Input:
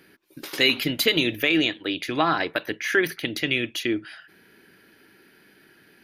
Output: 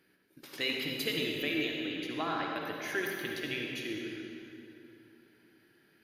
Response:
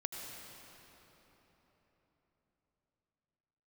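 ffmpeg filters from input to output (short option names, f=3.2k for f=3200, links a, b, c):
-filter_complex "[0:a]asettb=1/sr,asplit=3[a][b][c];[a]atrim=end=2.634[d];[b]atrim=start=2.63:end=3.27,asetpts=PTS-STARTPTS,afade=t=in:d=0.004:c=qsin,afade=t=out:st=0.636:d=0.004:c=qsin,highshelf=f=7.6k:g=8[e];[c]atrim=start=3.266[f];[d][e]acrossfade=d=0.004:c1=hsin:c2=qsin[g];[g][f]acrossfade=d=0.004:c1=qsin:c2=hsin[h];[1:a]atrim=start_sample=2205,asetrate=66150,aresample=44100[i];[h][i]afir=irnorm=-1:irlink=0,volume=-8dB"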